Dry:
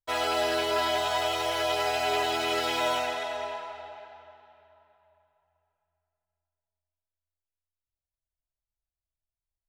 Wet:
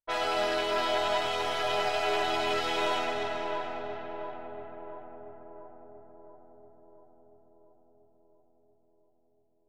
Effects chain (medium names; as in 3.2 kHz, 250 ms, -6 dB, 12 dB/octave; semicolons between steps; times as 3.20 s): partial rectifier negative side -7 dB; bass shelf 150 Hz -7.5 dB; filtered feedback delay 685 ms, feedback 67%, low-pass 1.2 kHz, level -5 dB; level-controlled noise filter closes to 1.1 kHz, open at -31 dBFS; treble shelf 7.5 kHz -12 dB; trim +1.5 dB